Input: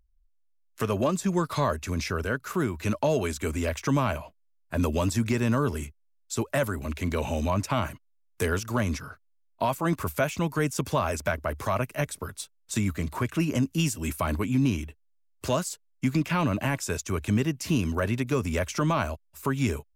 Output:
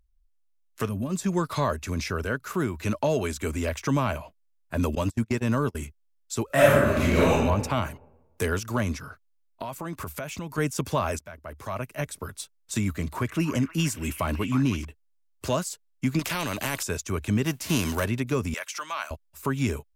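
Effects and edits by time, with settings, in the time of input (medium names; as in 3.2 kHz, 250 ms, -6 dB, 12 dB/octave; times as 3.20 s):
0.89–1.11 s: time-frequency box 290–8200 Hz -14 dB
4.95–5.75 s: gate -26 dBFS, range -35 dB
6.46–7.31 s: reverb throw, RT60 1.2 s, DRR -9.5 dB
8.92–10.58 s: compression, threshold -30 dBFS
11.19–12.31 s: fade in, from -22 dB
12.96–14.85 s: repeats whose band climbs or falls 313 ms, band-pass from 1.4 kHz, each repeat 0.7 oct, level -4.5 dB
16.19–16.83 s: spectrum-flattening compressor 2:1
17.45–18.04 s: formants flattened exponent 0.6
18.54–19.11 s: high-pass 1.2 kHz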